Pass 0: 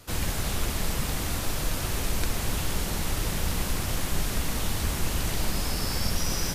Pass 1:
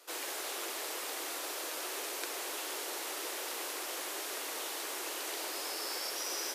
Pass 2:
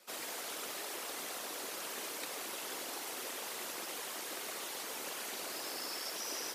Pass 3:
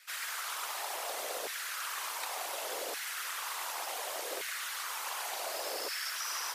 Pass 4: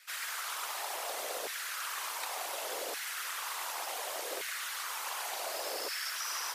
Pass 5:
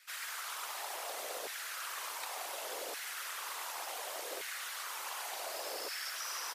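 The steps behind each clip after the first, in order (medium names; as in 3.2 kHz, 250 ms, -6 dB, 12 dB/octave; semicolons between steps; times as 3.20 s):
steep high-pass 330 Hz 48 dB/octave; trim -5.5 dB
whisper effect; trim -3 dB
LFO high-pass saw down 0.68 Hz 450–1800 Hz; trim +2.5 dB
no audible change
delay 677 ms -16.5 dB; trim -3.5 dB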